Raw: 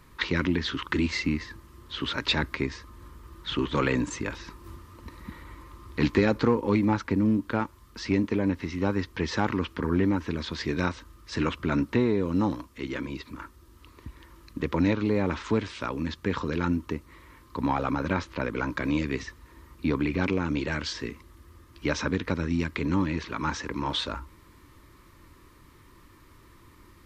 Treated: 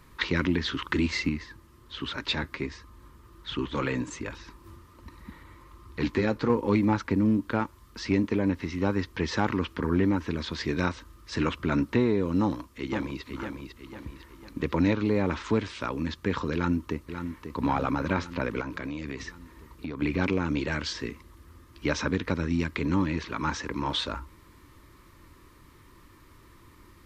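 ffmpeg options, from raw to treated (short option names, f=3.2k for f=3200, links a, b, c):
-filter_complex "[0:a]asettb=1/sr,asplit=3[a][b][c];[a]atrim=end=1.294[d];[b]atrim=start=1.29:end=6.5,asetpts=PTS-STARTPTS,afade=t=in:d=0.004:c=qsin,afade=t=out:st=5.206:d=0.004:c=qsin,flanger=delay=0.7:depth=8.5:regen=-48:speed=1.3:shape=sinusoidal[e];[c]atrim=start=6.496[f];[d][e]acrossfade=d=0.004:c1=hsin:c2=qsin[g];[g][f]acrossfade=d=0.004:c1=qsin:c2=hsin,asplit=2[h][i];[i]afade=t=in:st=12.42:d=0.01,afade=t=out:st=13.22:d=0.01,aecho=0:1:500|1000|1500|2000|2500:0.501187|0.225534|0.10149|0.0456707|0.0205518[j];[h][j]amix=inputs=2:normalize=0,asplit=2[k][l];[l]afade=t=in:st=16.54:d=0.01,afade=t=out:st=17.56:d=0.01,aecho=0:1:540|1080|1620|2160|2700|3240|3780|4320|4860:0.375837|0.244294|0.158791|0.103214|0.0670893|0.0436081|0.0283452|0.0184244|0.0119759[m];[k][m]amix=inputs=2:normalize=0,asettb=1/sr,asplit=3[n][o][p];[n]atrim=end=18.614[q];[o]atrim=start=18.61:end=20.02,asetpts=PTS-STARTPTS,afade=t=in:d=0.004:c=qsin,afade=t=out:st=1.406:d=0.004:c=qsin,acompressor=threshold=-30dB:ratio=12:attack=3.2:release=140:knee=1:detection=peak[r];[p]atrim=start=20.016[s];[q][r]acrossfade=d=0.004:c1=hsin:c2=qsin[t];[t][s]acrossfade=d=0.004:c1=qsin:c2=hsin"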